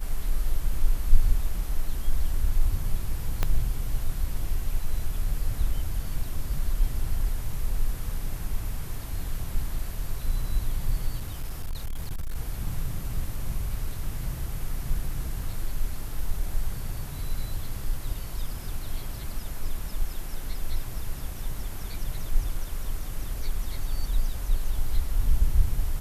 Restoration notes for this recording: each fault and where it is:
3.43 pop -11 dBFS
11.16–12.36 clipped -26.5 dBFS

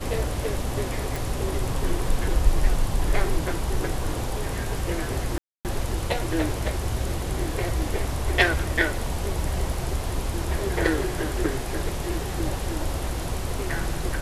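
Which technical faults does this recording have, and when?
1.16 pop
5.38–5.65 gap 0.268 s

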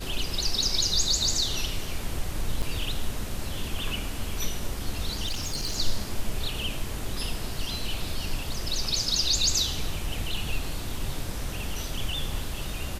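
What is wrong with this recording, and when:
2.62–2.63 gap 6.4 ms
5.26–5.77 clipped -25 dBFS

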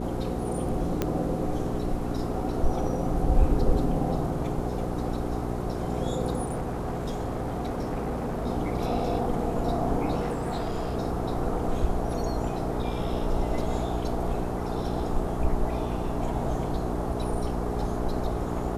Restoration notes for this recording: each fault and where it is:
hum 60 Hz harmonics 7 -32 dBFS
1.02 pop -12 dBFS
6.46–8.47 clipped -26 dBFS
10.2–10.96 clipped -25 dBFS

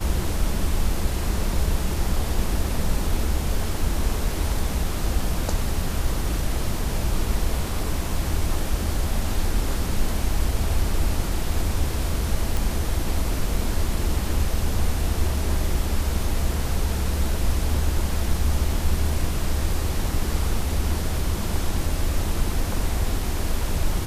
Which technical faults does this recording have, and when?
12.57 pop

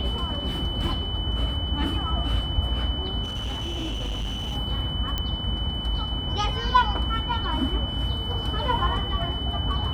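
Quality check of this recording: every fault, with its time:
tone 3000 Hz -31 dBFS
3.23–4.57 clipped -26 dBFS
5.18 pop -13 dBFS

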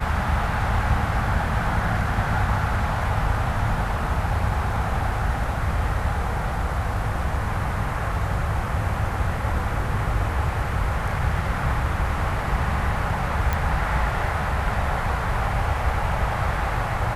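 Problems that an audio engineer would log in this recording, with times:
13.53 pop -10 dBFS

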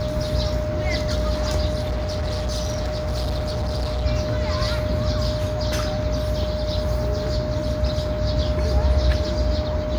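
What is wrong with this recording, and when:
buzz 60 Hz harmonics 40 -28 dBFS
tone 610 Hz -26 dBFS
1.81–4.06 clipped -21 dBFS

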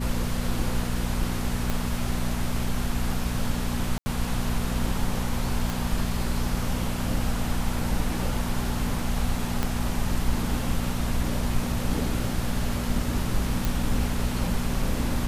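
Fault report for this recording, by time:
hum 60 Hz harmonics 4 -30 dBFS
1.7 pop -12 dBFS
3.98–4.06 gap 80 ms
5.7 pop
9.63 pop -11 dBFS
13.65 pop

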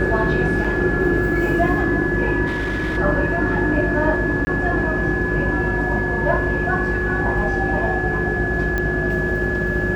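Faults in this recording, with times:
buzz 50 Hz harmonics 13 -26 dBFS
tone 1700 Hz -23 dBFS
0.64–0.65 gap 5.4 ms
2.46–2.98 clipped -19 dBFS
4.45–4.47 gap 20 ms
8.78 pop -10 dBFS

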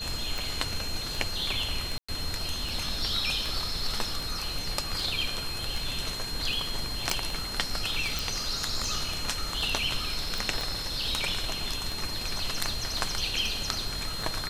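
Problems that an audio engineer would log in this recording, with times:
tick 78 rpm
tone 4200 Hz -35 dBFS
1.98–2.08 gap 0.105 s
7.1 pop
8.19 pop
10.61 pop

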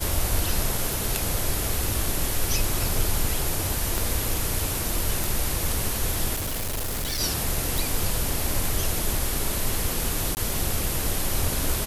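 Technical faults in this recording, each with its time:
0.93 pop
3.98 pop
5.24 pop
6.35–7.21 clipped -25 dBFS
7.78 pop
10.35–10.37 gap 19 ms

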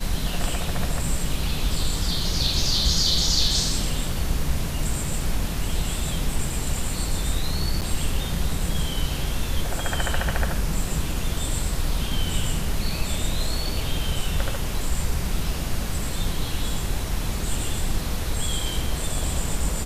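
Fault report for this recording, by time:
7.81–7.82 gap 8.1 ms

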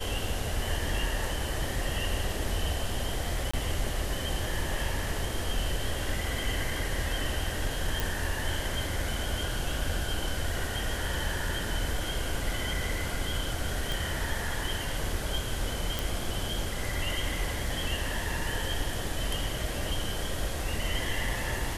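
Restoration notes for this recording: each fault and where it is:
3.51–3.54 gap 25 ms
8 pop
13.92 pop
15.99 pop

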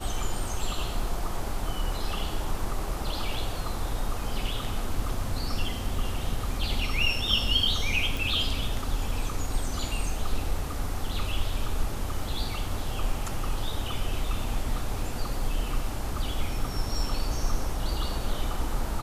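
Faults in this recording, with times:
8.17 pop

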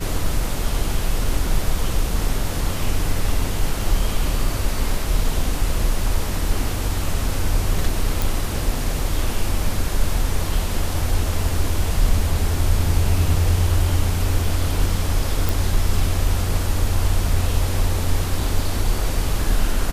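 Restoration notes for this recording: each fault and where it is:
8.22 pop
15.49 pop

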